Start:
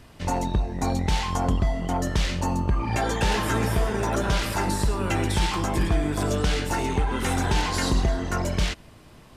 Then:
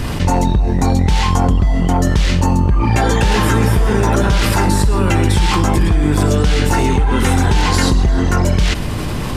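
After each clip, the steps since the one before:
low-shelf EQ 250 Hz +5.5 dB
notch filter 650 Hz, Q 12
envelope flattener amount 70%
level +3 dB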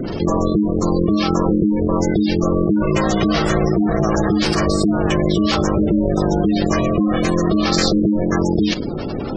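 ring modulation 260 Hz
dynamic equaliser 5,100 Hz, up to +8 dB, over −42 dBFS, Q 1
gate on every frequency bin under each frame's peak −20 dB strong
level −1 dB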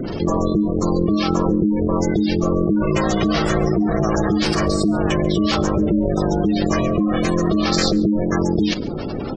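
single-tap delay 140 ms −22.5 dB
level −1.5 dB

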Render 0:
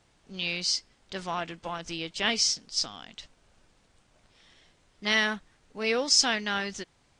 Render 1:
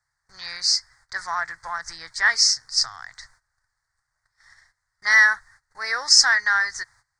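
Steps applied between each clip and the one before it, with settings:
high-shelf EQ 5,400 Hz +6 dB
noise gate −57 dBFS, range −18 dB
drawn EQ curve 130 Hz 0 dB, 200 Hz −28 dB, 580 Hz −11 dB, 860 Hz +3 dB, 1,900 Hz +14 dB, 2,800 Hz −28 dB, 4,500 Hz +5 dB, 6,800 Hz +2 dB
level +1 dB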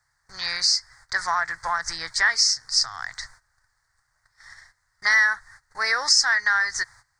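downward compressor 2.5 to 1, threshold −28 dBFS, peak gain reduction 12.5 dB
level +7 dB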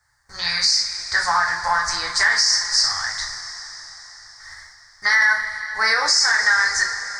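coupled-rooms reverb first 0.37 s, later 4.6 s, from −18 dB, DRR −1.5 dB
boost into a limiter +9 dB
level −6.5 dB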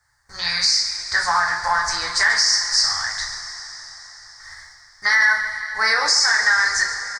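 single-tap delay 139 ms −12.5 dB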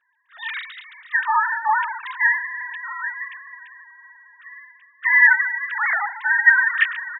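three sine waves on the formant tracks
level −1 dB

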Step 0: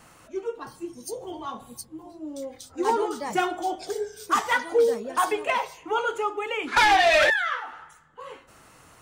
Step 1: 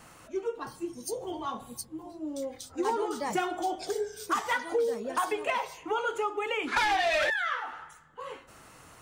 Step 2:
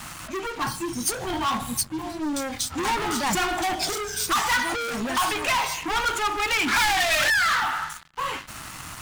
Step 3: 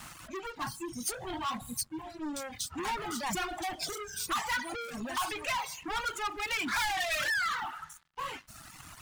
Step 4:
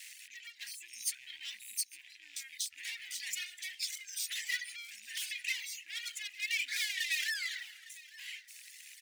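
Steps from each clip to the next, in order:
downward compressor 3 to 1, threshold −27 dBFS, peak gain reduction 8.5 dB
leveller curve on the samples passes 5; parametric band 470 Hz −14.5 dB 0.98 octaves
reverb reduction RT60 1.3 s; level −8.5 dB
loose part that buzzes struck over −53 dBFS, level −40 dBFS; elliptic high-pass filter 1,900 Hz, stop band 40 dB; repeating echo 856 ms, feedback 25%, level −20 dB

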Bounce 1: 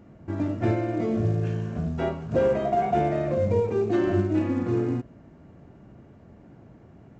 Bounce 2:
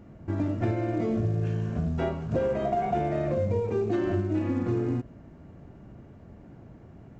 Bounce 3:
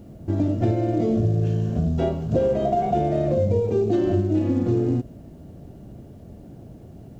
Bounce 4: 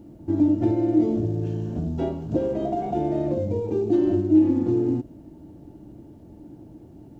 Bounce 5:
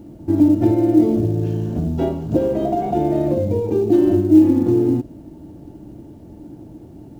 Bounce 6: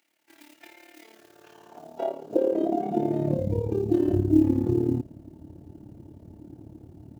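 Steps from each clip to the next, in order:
low-shelf EQ 70 Hz +8 dB; downward compressor, threshold −23 dBFS, peak gain reduction 6.5 dB
flat-topped bell 1,500 Hz −9.5 dB; bit reduction 12 bits; level +6 dB
hollow resonant body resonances 310/880 Hz, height 14 dB, ringing for 60 ms; level −6.5 dB
log-companded quantiser 8 bits; level +6 dB
high-pass filter sweep 2,100 Hz → 85 Hz, 0:01.00–0:03.76; amplitude modulation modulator 36 Hz, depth 60%; level −6 dB

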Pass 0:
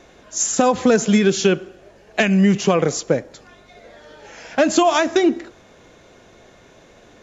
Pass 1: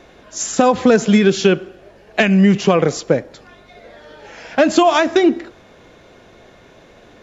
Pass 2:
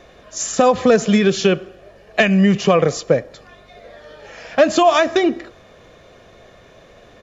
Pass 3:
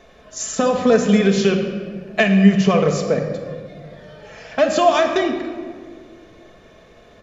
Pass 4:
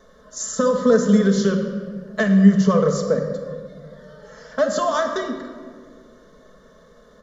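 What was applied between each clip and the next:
parametric band 6,700 Hz −7 dB 0.58 octaves; level +3 dB
comb filter 1.7 ms, depth 35%; level −1 dB
convolution reverb RT60 1.8 s, pre-delay 5 ms, DRR 2.5 dB; level −4 dB
phaser with its sweep stopped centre 500 Hz, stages 8

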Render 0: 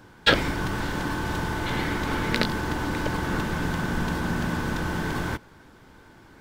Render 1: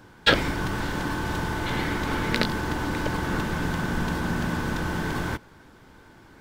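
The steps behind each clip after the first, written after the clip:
no processing that can be heard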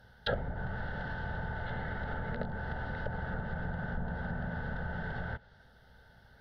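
mains hum 60 Hz, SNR 33 dB
phaser with its sweep stopped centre 1,600 Hz, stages 8
treble cut that deepens with the level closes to 910 Hz, closed at −24 dBFS
level −6 dB

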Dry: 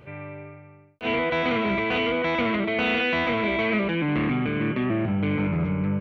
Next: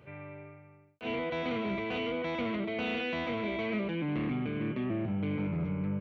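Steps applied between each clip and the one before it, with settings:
high-pass filter 64 Hz
dynamic equaliser 1,600 Hz, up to −6 dB, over −40 dBFS, Q 0.74
level −7.5 dB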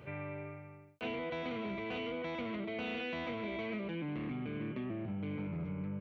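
downward compressor 6 to 1, threshold −41 dBFS, peak gain reduction 11.5 dB
level +4 dB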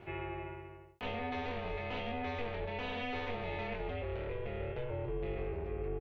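ring modulation 240 Hz
double-tracking delay 23 ms −6 dB
level +2.5 dB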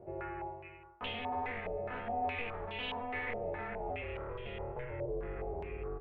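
spring reverb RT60 1.2 s, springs 37/46 ms, chirp 20 ms, DRR 10.5 dB
low-pass on a step sequencer 4.8 Hz 590–3,200 Hz
level −4 dB

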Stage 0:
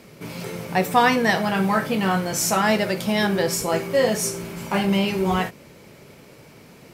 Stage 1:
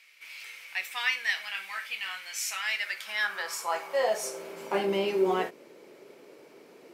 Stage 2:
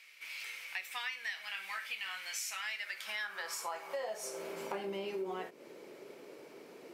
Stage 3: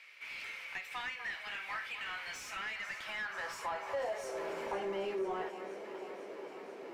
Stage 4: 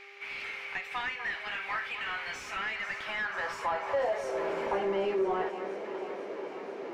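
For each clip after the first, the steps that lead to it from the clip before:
high-shelf EQ 5,800 Hz −5 dB; high-pass filter sweep 2,300 Hz → 370 Hz, 0:02.70–0:04.80; level −7.5 dB
downward compressor 6 to 1, threshold −37 dBFS, peak gain reduction 15.5 dB
on a send: delay that swaps between a low-pass and a high-pass 246 ms, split 1,800 Hz, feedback 84%, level −12 dB; on the sum: mid-hump overdrive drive 18 dB, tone 1,000 Hz, clips at −22 dBFS; level −2.5 dB
hum with harmonics 400 Hz, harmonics 17, −63 dBFS −5 dB per octave; low-pass filter 2,700 Hz 6 dB per octave; level +7.5 dB

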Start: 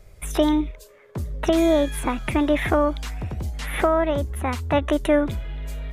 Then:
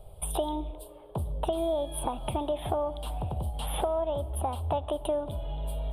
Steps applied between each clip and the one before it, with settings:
drawn EQ curve 150 Hz 0 dB, 280 Hz −6 dB, 830 Hz +9 dB, 2,000 Hz −23 dB, 3,200 Hz +4 dB, 6,400 Hz −26 dB, 9,100 Hz +5 dB, 14,000 Hz −2 dB
downward compressor 4 to 1, threshold −29 dBFS, peak gain reduction 14.5 dB
on a send at −16 dB: convolution reverb RT60 2.6 s, pre-delay 4 ms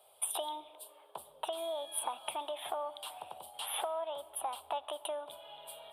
high-pass filter 1,100 Hz 12 dB per octave
level +1 dB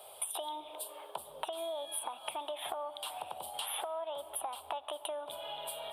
downward compressor 4 to 1, threshold −50 dBFS, peak gain reduction 16.5 dB
level +11.5 dB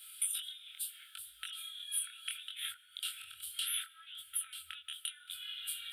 tilt shelving filter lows −6 dB, about 810 Hz
brick-wall band-stop 120–1,300 Hz
chorus effect 0.7 Hz, delay 20 ms, depth 6.3 ms
level +1 dB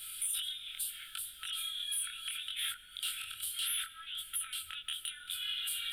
brickwall limiter −31.5 dBFS, peak gain reduction 9.5 dB
soft clipping −34 dBFS, distortion −20 dB
background noise brown −77 dBFS
level +7.5 dB

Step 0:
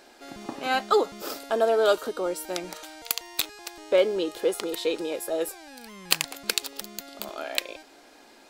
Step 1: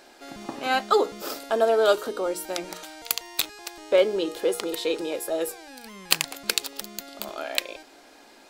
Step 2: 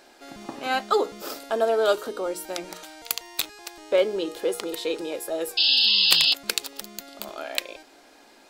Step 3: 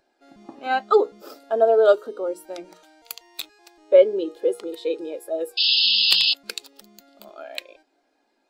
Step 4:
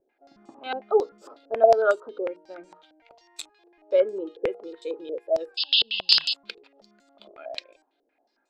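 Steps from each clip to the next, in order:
mains-hum notches 60/120/180/240/300/360/420/480 Hz; level +1.5 dB
sound drawn into the spectrogram noise, 0:05.57–0:06.34, 2,600–5,200 Hz −18 dBFS; level −1.5 dB
every bin expanded away from the loudest bin 1.5 to 1
low-pass on a step sequencer 11 Hz 450–7,800 Hz; level −7.5 dB

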